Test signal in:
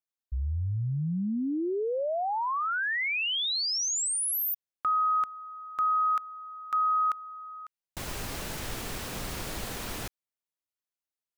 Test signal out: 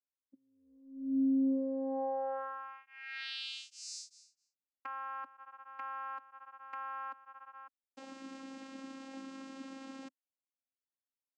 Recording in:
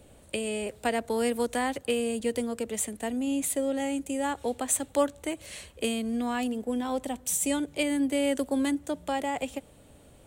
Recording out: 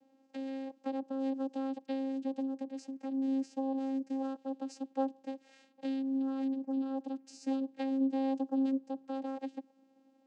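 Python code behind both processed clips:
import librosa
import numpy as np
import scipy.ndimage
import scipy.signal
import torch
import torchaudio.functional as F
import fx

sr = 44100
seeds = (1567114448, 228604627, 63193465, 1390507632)

y = fx.env_flanger(x, sr, rest_ms=11.1, full_db=-29.0)
y = fx.vocoder(y, sr, bands=8, carrier='saw', carrier_hz=268.0)
y = y * librosa.db_to_amplitude(-4.0)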